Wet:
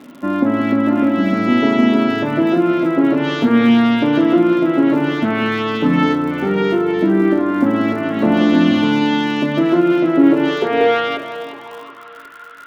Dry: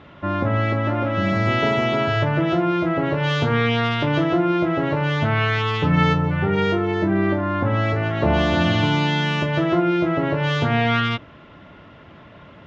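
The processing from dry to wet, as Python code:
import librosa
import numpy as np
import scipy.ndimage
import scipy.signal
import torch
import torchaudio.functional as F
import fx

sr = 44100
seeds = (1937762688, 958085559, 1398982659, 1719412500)

y = fx.filter_sweep_highpass(x, sr, from_hz=250.0, to_hz=1400.0, start_s=10.13, end_s=12.17, q=7.4)
y = fx.echo_alternate(y, sr, ms=181, hz=1200.0, feedback_pct=67, wet_db=-8.0)
y = fx.dmg_crackle(y, sr, seeds[0], per_s=93.0, level_db=-32.0)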